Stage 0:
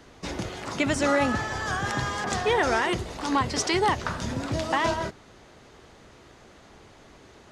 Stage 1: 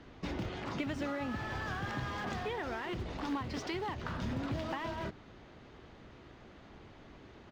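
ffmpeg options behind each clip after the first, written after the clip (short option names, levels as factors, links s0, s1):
-filter_complex "[0:a]asplit=2[s0][s1];[s1]aeval=exprs='(mod(20*val(0)+1,2)-1)/20':c=same,volume=0.447[s2];[s0][s2]amix=inputs=2:normalize=0,acompressor=threshold=0.0398:ratio=4,firequalizer=gain_entry='entry(300,0);entry(430,-4);entry(3000,-4);entry(8800,-22)':delay=0.05:min_phase=1,volume=0.631"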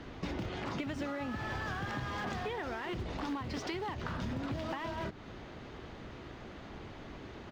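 -af "acompressor=threshold=0.00631:ratio=3,volume=2.24"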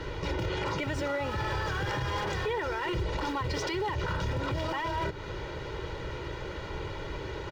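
-af "aecho=1:1:2.1:0.84,alimiter=level_in=2.37:limit=0.0631:level=0:latency=1:release=31,volume=0.422,volume=2.51"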